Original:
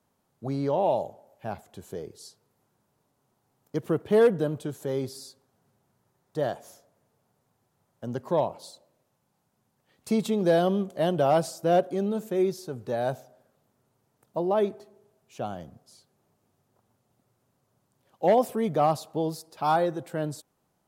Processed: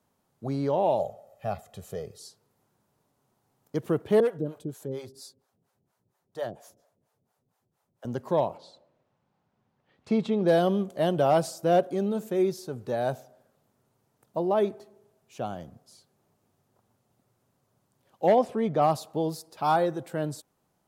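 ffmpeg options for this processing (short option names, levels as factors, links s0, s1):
-filter_complex "[0:a]asettb=1/sr,asplit=3[s0][s1][s2];[s0]atrim=end=0.994[s3];[s1]atrim=start=0.99:end=2.2,asetpts=PTS-STARTPTS,afade=t=in:d=0.004:c=qsin,afade=t=out:st=1.206:d=0.004:c=qsin,aecho=1:1:1.6:0.78,atrim=end_sample=53361[s4];[s2]atrim=start=2.196[s5];[s3][s4]acrossfade=d=0.004:c1=hsin:c2=qsin[s6];[s6][s5]acrossfade=d=0.004:c1=qsin:c2=hsin,asettb=1/sr,asplit=3[s7][s8][s9];[s7]atrim=end=4.204[s10];[s8]atrim=start=4.2:end=8.05,asetpts=PTS-STARTPTS,afade=t=in:d=0.004:c=qsin,afade=t=out:st=3.846:d=0.004:c=qsin,acrossover=split=490[s11][s12];[s11]aeval=exprs='val(0)*(1-1/2+1/2*cos(2*PI*4.3*n/s))':c=same[s13];[s12]aeval=exprs='val(0)*(1-1/2-1/2*cos(2*PI*4.3*n/s))':c=same[s14];[s13][s14]amix=inputs=2:normalize=0[s15];[s9]atrim=start=8.046[s16];[s10][s15]acrossfade=d=0.004:c1=hsin:c2=qsin[s17];[s17][s16]acrossfade=d=0.004:c1=qsin:c2=hsin,asplit=3[s18][s19][s20];[s18]afade=t=out:st=8.57:d=0.02[s21];[s19]lowpass=3300,afade=t=in:st=8.57:d=0.02,afade=t=out:st=10.47:d=0.02[s22];[s20]afade=t=in:st=10.47:d=0.02[s23];[s21][s22][s23]amix=inputs=3:normalize=0,asettb=1/sr,asplit=3[s24][s25][s26];[s24]atrim=end=18.324[s27];[s25]atrim=start=18.32:end=18.82,asetpts=PTS-STARTPTS,afade=t=in:d=0.004:c=qsin,afade=t=out:st=0.496:d=0.004:c=qsin,adynamicsmooth=sensitivity=2.5:basefreq=5100[s28];[s26]atrim=start=18.816[s29];[s27][s28]acrossfade=d=0.004:c1=hsin:c2=qsin[s30];[s30][s29]acrossfade=d=0.004:c1=qsin:c2=hsin"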